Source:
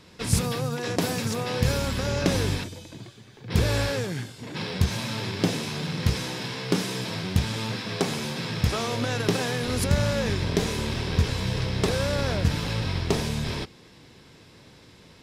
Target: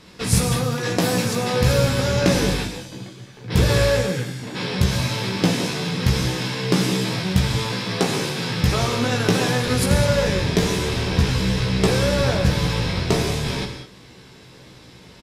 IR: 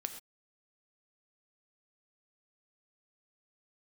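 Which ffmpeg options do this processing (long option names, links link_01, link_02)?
-filter_complex "[0:a]asplit=2[link_01][link_02];[link_02]adelay=16,volume=-4.5dB[link_03];[link_01][link_03]amix=inputs=2:normalize=0[link_04];[1:a]atrim=start_sample=2205,asetrate=28224,aresample=44100[link_05];[link_04][link_05]afir=irnorm=-1:irlink=0,volume=3dB"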